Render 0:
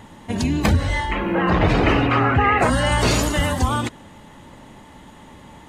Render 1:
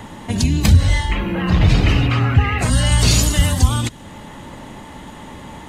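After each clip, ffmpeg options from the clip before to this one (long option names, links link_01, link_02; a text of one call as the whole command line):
ffmpeg -i in.wav -filter_complex "[0:a]acrossover=split=180|3000[link_01][link_02][link_03];[link_02]acompressor=threshold=-38dB:ratio=3[link_04];[link_01][link_04][link_03]amix=inputs=3:normalize=0,volume=8dB" out.wav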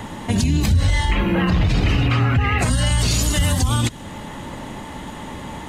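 ffmpeg -i in.wav -af "alimiter=limit=-12.5dB:level=0:latency=1:release=89,volume=3dB" out.wav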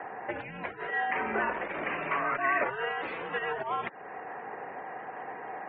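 ffmpeg -i in.wav -af "highpass=frequency=500:width_type=q:width=0.5412,highpass=frequency=500:width_type=q:width=1.307,lowpass=frequency=2300:width_type=q:width=0.5176,lowpass=frequency=2300:width_type=q:width=0.7071,lowpass=frequency=2300:width_type=q:width=1.932,afreqshift=-120,afftfilt=real='re*gte(hypot(re,im),0.00316)':imag='im*gte(hypot(re,im),0.00316)':win_size=1024:overlap=0.75,volume=-3dB" out.wav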